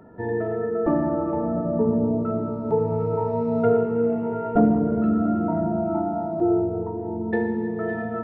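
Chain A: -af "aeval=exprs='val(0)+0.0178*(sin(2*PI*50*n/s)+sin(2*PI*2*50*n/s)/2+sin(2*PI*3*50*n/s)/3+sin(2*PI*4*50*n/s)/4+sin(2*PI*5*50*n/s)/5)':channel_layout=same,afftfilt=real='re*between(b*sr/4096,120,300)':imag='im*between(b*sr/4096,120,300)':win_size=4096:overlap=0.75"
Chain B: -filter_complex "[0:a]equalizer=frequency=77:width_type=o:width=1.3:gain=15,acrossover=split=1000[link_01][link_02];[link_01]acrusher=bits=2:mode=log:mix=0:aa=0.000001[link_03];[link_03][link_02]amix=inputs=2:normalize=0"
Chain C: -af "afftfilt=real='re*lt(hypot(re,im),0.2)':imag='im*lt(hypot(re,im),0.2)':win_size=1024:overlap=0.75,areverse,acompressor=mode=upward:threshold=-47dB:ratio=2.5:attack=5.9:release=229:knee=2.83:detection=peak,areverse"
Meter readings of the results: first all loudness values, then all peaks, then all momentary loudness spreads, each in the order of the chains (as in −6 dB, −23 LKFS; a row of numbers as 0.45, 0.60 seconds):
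−27.5, −21.0, −35.0 LKFS; −11.0, −3.0, −22.0 dBFS; 15, 7, 3 LU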